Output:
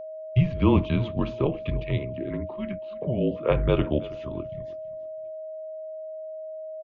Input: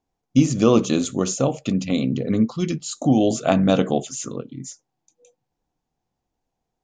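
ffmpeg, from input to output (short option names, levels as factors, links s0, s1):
-filter_complex "[0:a]agate=range=0.0224:threshold=0.00562:ratio=3:detection=peak,highpass=f=200:t=q:w=0.5412,highpass=f=200:t=q:w=1.307,lowpass=f=3300:t=q:w=0.5176,lowpass=f=3300:t=q:w=0.7071,lowpass=f=3300:t=q:w=1.932,afreqshift=-140,aeval=exprs='val(0)+0.0251*sin(2*PI*630*n/s)':c=same,asettb=1/sr,asplit=3[s0][s1][s2];[s0]atrim=end=1.984[s3];[s1]atrim=start=1.98:end=3.5,asetpts=PTS-STARTPTS,afade=t=in:d=0.004:c=qsin,afade=t=out:st=1.516:d=0.004:c=qsin,acrossover=split=170 2400:gain=0.158 1 0.178[s4][s5][s6];[s4][s5][s6]amix=inputs=3:normalize=0[s7];[s2]atrim=start=3.496[s8];[s3][s7]acrossfade=d=0.004:c1=hsin:c2=qsin[s9];[s9][s8]acrossfade=d=0.004:c1=qsin:c2=hsin,asplit=2[s10][s11];[s11]aecho=0:1:327|654:0.106|0.0286[s12];[s10][s12]amix=inputs=2:normalize=0,volume=0.708"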